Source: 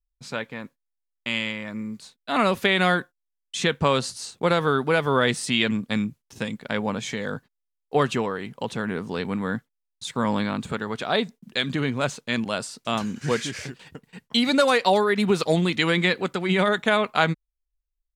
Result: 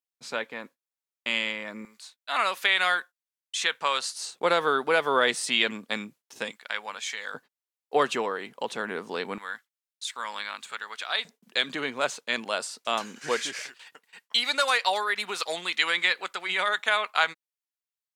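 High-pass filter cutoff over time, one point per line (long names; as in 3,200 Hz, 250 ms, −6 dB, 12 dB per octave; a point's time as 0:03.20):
350 Hz
from 0:01.85 1,000 Hz
from 0:04.15 450 Hz
from 0:06.51 1,200 Hz
from 0:07.34 410 Hz
from 0:09.38 1,400 Hz
from 0:11.25 490 Hz
from 0:13.62 1,000 Hz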